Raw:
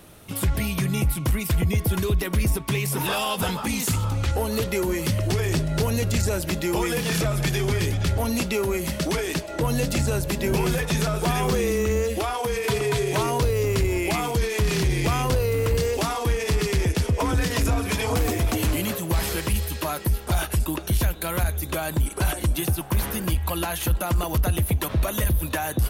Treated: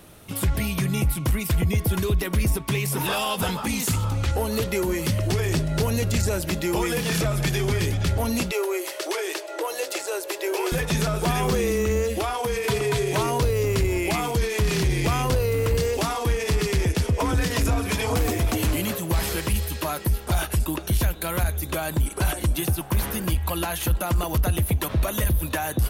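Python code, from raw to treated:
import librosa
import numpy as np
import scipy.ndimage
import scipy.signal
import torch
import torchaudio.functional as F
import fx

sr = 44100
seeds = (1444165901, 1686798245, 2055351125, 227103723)

y = fx.ellip_highpass(x, sr, hz=350.0, order=4, stop_db=40, at=(8.51, 10.72))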